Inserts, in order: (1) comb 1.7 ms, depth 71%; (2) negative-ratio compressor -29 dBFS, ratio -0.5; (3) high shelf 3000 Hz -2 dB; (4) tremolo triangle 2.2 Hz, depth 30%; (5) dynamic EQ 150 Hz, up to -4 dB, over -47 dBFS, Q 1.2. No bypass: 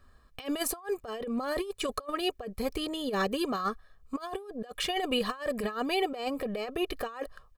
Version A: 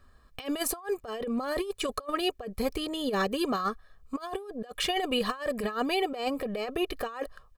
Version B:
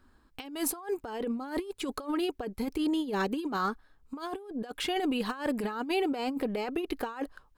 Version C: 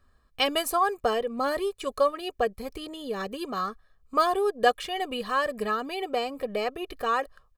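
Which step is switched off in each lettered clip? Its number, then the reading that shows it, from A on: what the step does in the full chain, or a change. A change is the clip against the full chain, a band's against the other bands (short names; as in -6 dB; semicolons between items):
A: 4, loudness change +1.5 LU; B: 1, 250 Hz band +4.0 dB; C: 2, crest factor change +3.0 dB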